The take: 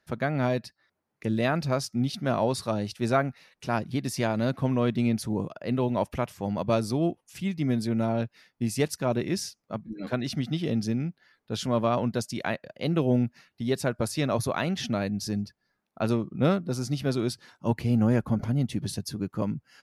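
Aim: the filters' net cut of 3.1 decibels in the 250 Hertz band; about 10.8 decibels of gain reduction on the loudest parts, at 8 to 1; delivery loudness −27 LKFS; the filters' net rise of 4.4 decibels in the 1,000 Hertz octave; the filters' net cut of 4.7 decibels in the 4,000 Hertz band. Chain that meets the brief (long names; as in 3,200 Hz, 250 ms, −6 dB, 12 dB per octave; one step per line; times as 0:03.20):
parametric band 250 Hz −4 dB
parametric band 1,000 Hz +6.5 dB
parametric band 4,000 Hz −6.5 dB
downward compressor 8 to 1, threshold −29 dBFS
level +8.5 dB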